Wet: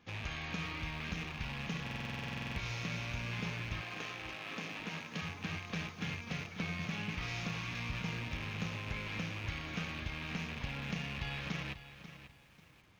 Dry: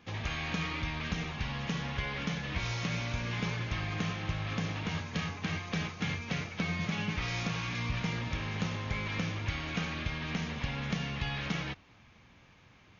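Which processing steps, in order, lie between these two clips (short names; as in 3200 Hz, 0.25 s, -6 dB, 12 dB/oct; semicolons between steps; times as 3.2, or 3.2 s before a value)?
rattling part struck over -39 dBFS, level -27 dBFS; 3.8–5.2 HPF 360 Hz -> 140 Hz 24 dB/oct; stuck buffer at 1.82, samples 2048, times 15; lo-fi delay 0.54 s, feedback 35%, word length 9-bit, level -12.5 dB; gain -6 dB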